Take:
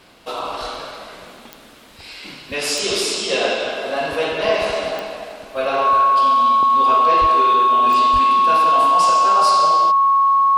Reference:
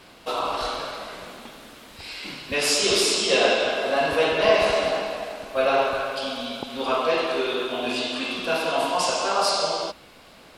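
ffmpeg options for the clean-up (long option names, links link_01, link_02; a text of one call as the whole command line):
ffmpeg -i in.wav -filter_complex "[0:a]adeclick=threshold=4,bandreject=frequency=1100:width=30,asplit=3[link_01][link_02][link_03];[link_01]afade=type=out:start_time=7.2:duration=0.02[link_04];[link_02]highpass=frequency=140:width=0.5412,highpass=frequency=140:width=1.3066,afade=type=in:start_time=7.2:duration=0.02,afade=type=out:start_time=7.32:duration=0.02[link_05];[link_03]afade=type=in:start_time=7.32:duration=0.02[link_06];[link_04][link_05][link_06]amix=inputs=3:normalize=0,asplit=3[link_07][link_08][link_09];[link_07]afade=type=out:start_time=8.12:duration=0.02[link_10];[link_08]highpass=frequency=140:width=0.5412,highpass=frequency=140:width=1.3066,afade=type=in:start_time=8.12:duration=0.02,afade=type=out:start_time=8.24:duration=0.02[link_11];[link_09]afade=type=in:start_time=8.24:duration=0.02[link_12];[link_10][link_11][link_12]amix=inputs=3:normalize=0" out.wav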